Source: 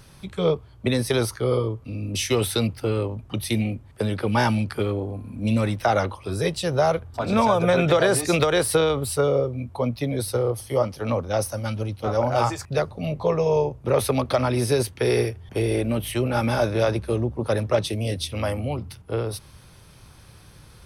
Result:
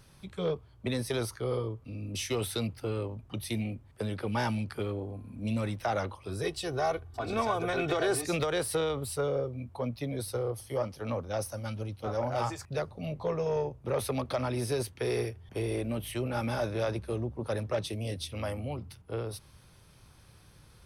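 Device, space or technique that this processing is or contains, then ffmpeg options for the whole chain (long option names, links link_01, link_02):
saturation between pre-emphasis and de-emphasis: -filter_complex "[0:a]highshelf=frequency=6700:gain=8,asoftclip=type=tanh:threshold=-12dB,highshelf=frequency=6700:gain=-8,asettb=1/sr,asplit=3[link_01][link_02][link_03];[link_01]atrim=end=6.434[link_04];[link_02]atrim=start=6.43:end=8.22,asetpts=PTS-STARTPTS,afade=type=in:duration=0.004:curve=qsin,afade=type=out:start_time=1.786:duration=0.004:curve=qsin,aecho=1:1:2.7:0.63,atrim=end_sample=78939[link_05];[link_03]atrim=start=8.216[link_06];[link_04][link_05]acrossfade=duration=0.004:curve1=hsin:curve2=qsin[link_07];[link_07][link_06]acrossfade=duration=0.004:curve1=qsin:curve2=hsin,volume=-8.5dB"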